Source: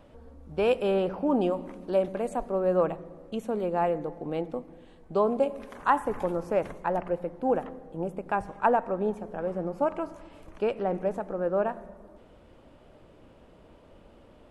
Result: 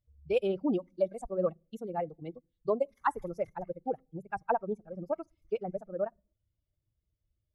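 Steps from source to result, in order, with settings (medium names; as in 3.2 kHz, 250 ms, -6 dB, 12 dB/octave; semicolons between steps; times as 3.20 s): expander on every frequency bin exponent 2; time stretch by phase-locked vocoder 0.52×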